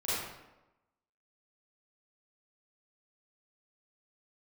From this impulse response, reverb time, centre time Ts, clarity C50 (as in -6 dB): 1.0 s, 97 ms, -4.5 dB